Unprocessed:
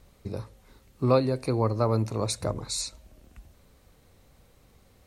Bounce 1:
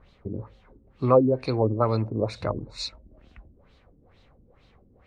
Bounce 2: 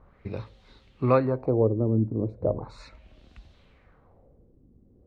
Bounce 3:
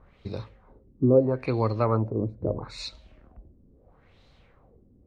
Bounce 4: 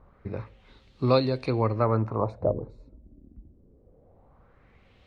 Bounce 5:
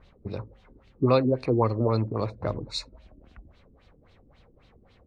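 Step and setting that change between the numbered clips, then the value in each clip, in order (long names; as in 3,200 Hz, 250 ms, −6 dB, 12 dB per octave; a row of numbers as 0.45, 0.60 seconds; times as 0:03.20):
auto-filter low-pass, speed: 2.2, 0.37, 0.76, 0.23, 3.7 Hertz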